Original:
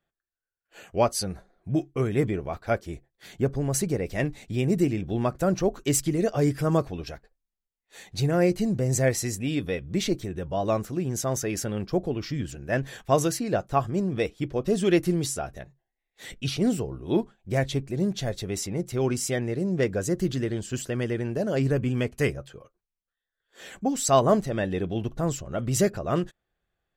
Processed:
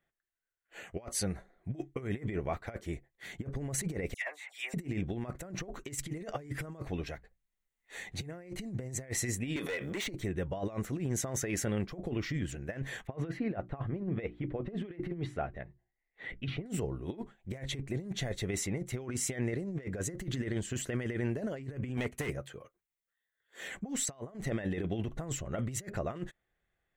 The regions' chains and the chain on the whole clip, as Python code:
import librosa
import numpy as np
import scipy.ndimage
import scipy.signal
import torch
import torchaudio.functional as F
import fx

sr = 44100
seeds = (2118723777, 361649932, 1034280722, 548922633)

y = fx.chain(x, sr, fx.highpass(hz=820.0, slope=24),
    fx.dispersion(late='lows', ms=82.0, hz=2100.0), at=(4.14, 4.74))
y = fx.chain(y, sr, fx.hum_notches(base_hz=60, count=3),
    fx.band_squash(depth_pct=40), at=(7.05, 8.21))
y = fx.chain(y, sr, fx.highpass(hz=460.0, slope=12),
    fx.clip_hard(threshold_db=-32.0),
    fx.pre_swell(db_per_s=26.0), at=(9.56, 10.07))
y = fx.chain(y, sr, fx.air_absorb(metres=400.0),
    fx.hum_notches(base_hz=60, count=6), at=(13.07, 16.66))
y = fx.chain(y, sr, fx.highpass(hz=87.0, slope=6),
    fx.high_shelf(hz=9400.0, db=7.5),
    fx.overload_stage(gain_db=25.5), at=(21.97, 23.68))
y = fx.graphic_eq_31(y, sr, hz=(2000, 5000, 12500), db=(9, -9, -6))
y = fx.over_compress(y, sr, threshold_db=-29.0, ratio=-0.5)
y = y * 10.0 ** (-6.0 / 20.0)